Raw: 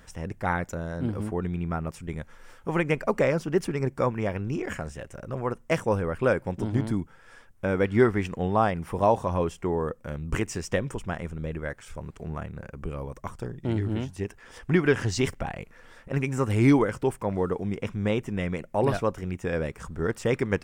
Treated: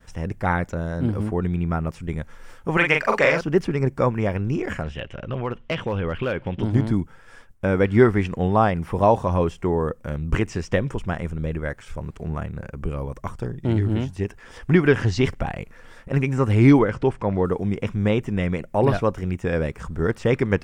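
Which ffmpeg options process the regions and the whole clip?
-filter_complex "[0:a]asettb=1/sr,asplit=3[a][b][c];[a]atrim=end=2.774[d];[b]atrim=start=2.77:end=3.41,asetpts=PTS-STARTPTS,afade=t=in:d=0.004:c=qsin,afade=t=out:st=0.636:d=0.004:c=qsin,tiltshelf=f=690:g=-9.5,asplit=2[e][f];[f]adelay=41,volume=-4dB[g];[e][g]amix=inputs=2:normalize=0,atrim=end_sample=28224[h];[c]atrim=start=3.406[i];[d][h]acrossfade=d=0.004:c1=hsin:c2=qsin[j];[j][i]acrossfade=d=0.004:c1=qsin:c2=hsin,asettb=1/sr,asplit=3[k][l][m];[k]atrim=end=4.834[n];[l]atrim=start=4.83:end=6.63,asetpts=PTS-STARTPTS,afade=t=in:d=0.004:c=qsin,afade=t=out:st=1.796:d=0.004:c=qsin,acompressor=threshold=-27dB:ratio=3:attack=3.2:release=140:knee=1:detection=peak,lowpass=f=3.1k:t=q:w=5.4,asoftclip=type=hard:threshold=-22.5dB[o];[m]atrim=start=6.626[p];[n][o]acrossfade=d=0.004:c1=hsin:c2=qsin[q];[q][p]acrossfade=d=0.004:c1=qsin:c2=hsin,asettb=1/sr,asplit=3[r][s][t];[r]atrim=end=16.794[u];[s]atrim=start=16.79:end=17.45,asetpts=PTS-STARTPTS,afade=t=in:d=0.004:c=qsin,afade=t=out:st=0.656:d=0.004:c=qsin,lowpass=4.5k,acompressor=mode=upward:threshold=-33dB:ratio=2.5:attack=3.2:release=140:knee=2.83:detection=peak[v];[t]atrim=start=17.446[w];[u][v]acrossfade=d=0.004:c1=hsin:c2=qsin[x];[x][w]acrossfade=d=0.004:c1=qsin:c2=hsin,acrossover=split=5200[y][z];[z]acompressor=threshold=-57dB:ratio=4:attack=1:release=60[aa];[y][aa]amix=inputs=2:normalize=0,agate=range=-33dB:threshold=-49dB:ratio=3:detection=peak,lowshelf=f=180:g=4,volume=4dB"

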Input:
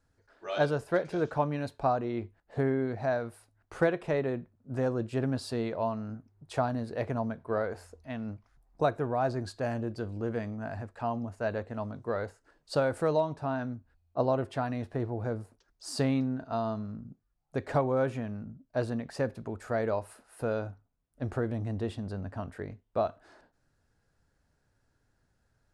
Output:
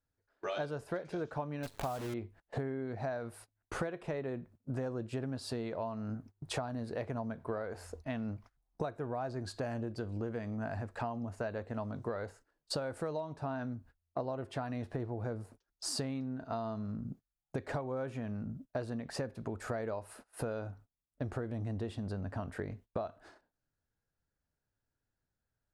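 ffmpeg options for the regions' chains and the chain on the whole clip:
-filter_complex "[0:a]asettb=1/sr,asplit=3[a][b][c];[a]atrim=end=1.634[d];[b]atrim=start=1.63:end=2.14,asetpts=PTS-STARTPTS,afade=t=in:d=0.004:c=qsin,afade=t=out:st=0.506:d=0.004:c=qsin,asubboost=boost=9:cutoff=160,acompressor=mode=upward:threshold=-34dB:ratio=2.5:attack=3.2:release=140:knee=2.83:detection=peak,acrusher=bits=7:dc=4:mix=0:aa=0.000001[e];[c]atrim=start=2.136[f];[d][e]acrossfade=d=0.004:c1=hsin:c2=qsin[g];[g][f]acrossfade=d=0.004:c1=qsin:c2=hsin,agate=range=-22dB:threshold=-54dB:ratio=16:detection=peak,acompressor=threshold=-42dB:ratio=8,volume=7dB"

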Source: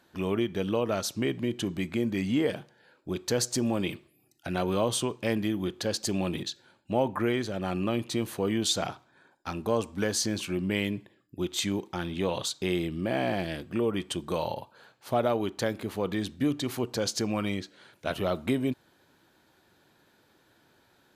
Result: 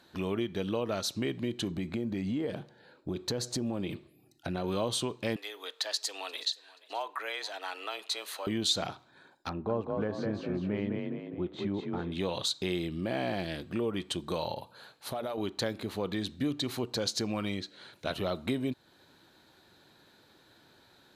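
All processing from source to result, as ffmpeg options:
-filter_complex "[0:a]asettb=1/sr,asplit=3[a][b][c];[a]atrim=end=1.714[d];[b]atrim=start=1.71:end=4.64,asetpts=PTS-STARTPTS,afade=t=in:d=0.004:c=qsin,afade=t=out:st=2.926:d=0.004:c=qsin,tiltshelf=f=1.1k:g=4,acompressor=threshold=-28dB:ratio=2.5:attack=3.2:release=140:knee=1:detection=peak[e];[c]atrim=start=4.636[f];[d][e]acrossfade=d=0.004:c1=hsin:c2=qsin[g];[g][f]acrossfade=d=0.004:c1=qsin:c2=hsin,asettb=1/sr,asplit=3[h][i][j];[h]atrim=end=5.364[k];[i]atrim=start=5.36:end=8.47,asetpts=PTS-STARTPTS,afade=t=in:d=0.004:c=qsin,afade=t=out:st=3.106:d=0.004:c=qsin,highpass=860,aecho=1:1:479|958:0.0708|0.0227,atrim=end_sample=137151,afreqshift=95[l];[j]atrim=start=8.466[m];[k][l]acrossfade=d=0.004:c1=hsin:c2=qsin[n];[n][m]acrossfade=d=0.004:c1=qsin:c2=hsin,asettb=1/sr,asplit=3[o][p][q];[o]atrim=end=9.494[r];[p]atrim=start=9.49:end=12.12,asetpts=PTS-STARTPTS,afade=t=in:d=0.004:c=qsin,afade=t=out:st=2.626:d=0.004:c=qsin,lowpass=1.3k,asplit=6[s][t][u][v][w][x];[t]adelay=205,afreqshift=33,volume=-4dB[y];[u]adelay=410,afreqshift=66,volume=-12.6dB[z];[v]adelay=615,afreqshift=99,volume=-21.3dB[aa];[w]adelay=820,afreqshift=132,volume=-29.9dB[ab];[x]adelay=1025,afreqshift=165,volume=-38.5dB[ac];[s][y][z][aa][ab][ac]amix=inputs=6:normalize=0,atrim=end_sample=115983[ad];[q]atrim=start=12.116[ae];[r][ad]acrossfade=d=0.004:c1=hsin:c2=qsin[af];[af][ae]acrossfade=d=0.004:c1=qsin:c2=hsin,asettb=1/sr,asplit=3[ag][ah][ai];[ag]atrim=end=14.614[aj];[ah]atrim=start=14.61:end=15.38,asetpts=PTS-STARTPTS,afade=t=in:d=0.004:c=qsin,afade=t=out:st=0.766:d=0.004:c=qsin,bandreject=f=60:t=h:w=6,bandreject=f=120:t=h:w=6,bandreject=f=180:t=h:w=6,bandreject=f=240:t=h:w=6,bandreject=f=300:t=h:w=6,bandreject=f=360:t=h:w=6,bandreject=f=420:t=h:w=6,bandreject=f=480:t=h:w=6,bandreject=f=540:t=h:w=6,acompressor=threshold=-36dB:ratio=2:attack=3.2:release=140:knee=1:detection=peak,equalizer=f=11k:t=o:w=0.49:g=9.5[ak];[ai]atrim=start=15.376[al];[aj][ak]acrossfade=d=0.004:c1=hsin:c2=qsin[am];[am][al]acrossfade=d=0.004:c1=qsin:c2=hsin,highshelf=f=11k:g=-4,acompressor=threshold=-41dB:ratio=1.5,equalizer=f=4k:t=o:w=0.28:g=9,volume=2dB"

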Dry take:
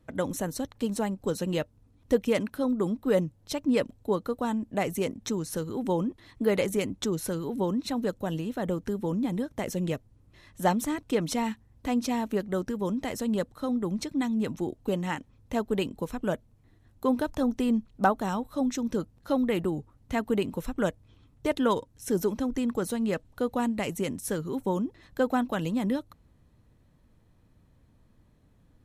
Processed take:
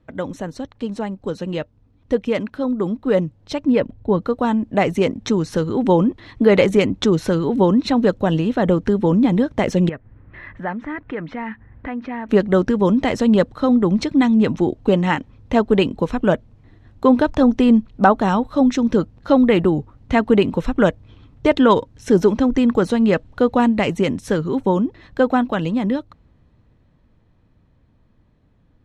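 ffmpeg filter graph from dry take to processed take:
-filter_complex "[0:a]asettb=1/sr,asplit=3[a][b][c];[a]atrim=end=3.724[d];[b]atrim=start=3.72:end=4.22,asetpts=PTS-STARTPTS,afade=t=in:d=0.004:c=qsin,afade=t=out:st=0.496:d=0.004:c=qsin,asubboost=boost=11:cutoff=220,lowpass=f=2k:p=1,bandreject=f=1.2k:w=11[e];[c]atrim=start=4.216[f];[d][e]acrossfade=d=0.004:c1=hsin:c2=qsin[g];[g][f]acrossfade=d=0.004:c1=qsin:c2=hsin,asettb=1/sr,asplit=3[h][i][j];[h]atrim=end=9.894[k];[i]atrim=start=9.89:end=12.29,asetpts=PTS-STARTPTS,afade=t=in:d=0.004:c=qsin,afade=t=out:st=2.396:d=0.004:c=qsin,acompressor=threshold=-51dB:ratio=2:attack=3.2:release=140:knee=1:detection=peak,lowpass=f=1.8k:t=q:w=3[l];[j]atrim=start=12.286[m];[k][l]acrossfade=d=0.004:c1=hsin:c2=qsin[n];[n][m]acrossfade=d=0.004:c1=qsin:c2=hsin,lowpass=4k,dynaudnorm=f=380:g=21:m=11.5dB,alimiter=level_in=4.5dB:limit=-1dB:release=50:level=0:latency=1,volume=-1dB"

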